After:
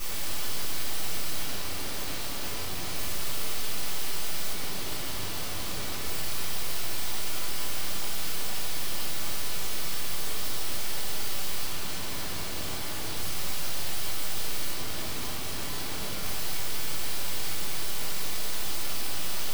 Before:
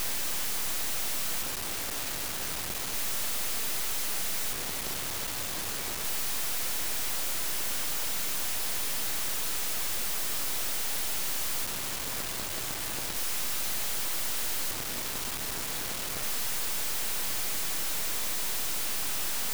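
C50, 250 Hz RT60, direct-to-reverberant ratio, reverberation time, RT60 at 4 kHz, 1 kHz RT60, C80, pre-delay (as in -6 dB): 0.5 dB, 1.9 s, -11.0 dB, 1.3 s, 1.2 s, 1.1 s, 2.5 dB, 3 ms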